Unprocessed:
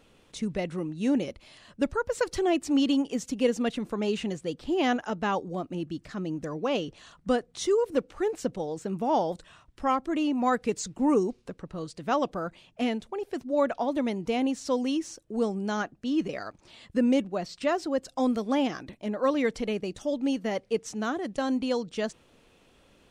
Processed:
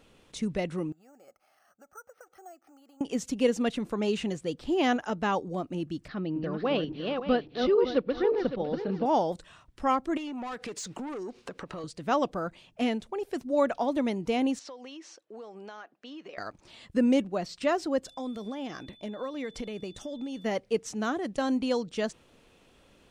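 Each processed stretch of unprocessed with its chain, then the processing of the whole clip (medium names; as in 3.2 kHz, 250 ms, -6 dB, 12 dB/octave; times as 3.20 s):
0.92–3.01 s: compression 10:1, threshold -34 dBFS + two resonant band-passes 1 kHz, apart 0.71 oct + careless resampling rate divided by 6×, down filtered, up hold
6.08–9.06 s: backward echo that repeats 280 ms, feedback 45%, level -4 dB + steep low-pass 4.7 kHz 48 dB/octave + band-stop 1 kHz, Q 17
10.17–11.84 s: overdrive pedal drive 20 dB, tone 4.3 kHz, clips at -13.5 dBFS + compression 8:1, threshold -35 dBFS
13.19–13.91 s: treble shelf 7.9 kHz +5.5 dB + hum notches 50/100/150 Hz
14.59–16.38 s: band-pass 540–4100 Hz + compression 8:1, threshold -40 dBFS
18.04–20.44 s: compression, threshold -31 dBFS + tremolo 5.2 Hz, depth 28% + whistle 3.5 kHz -55 dBFS
whole clip: none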